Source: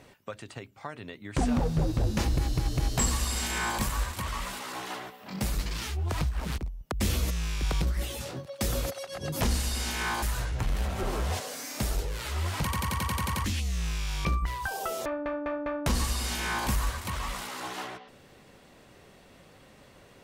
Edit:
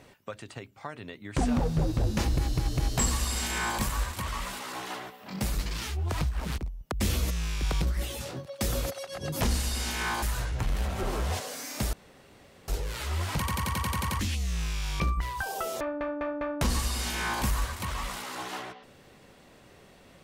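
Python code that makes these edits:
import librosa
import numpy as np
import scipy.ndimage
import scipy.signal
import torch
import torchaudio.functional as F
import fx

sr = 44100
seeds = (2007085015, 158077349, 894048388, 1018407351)

y = fx.edit(x, sr, fx.insert_room_tone(at_s=11.93, length_s=0.75), tone=tone)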